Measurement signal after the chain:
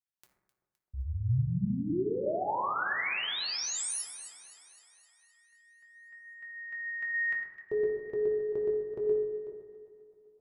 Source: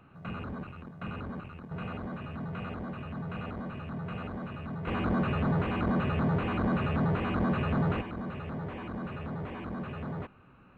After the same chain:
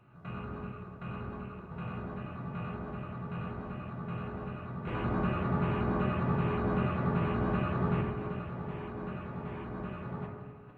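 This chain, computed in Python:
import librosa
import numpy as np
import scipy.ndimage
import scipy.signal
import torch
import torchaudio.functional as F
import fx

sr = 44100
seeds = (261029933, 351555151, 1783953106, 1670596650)

y = fx.reverse_delay(x, sr, ms=238, wet_db=-12.0)
y = fx.echo_alternate(y, sr, ms=129, hz=820.0, feedback_pct=77, wet_db=-13.5)
y = fx.rev_fdn(y, sr, rt60_s=1.3, lf_ratio=1.05, hf_ratio=0.3, size_ms=48.0, drr_db=-1.0)
y = y * librosa.db_to_amplitude(-6.5)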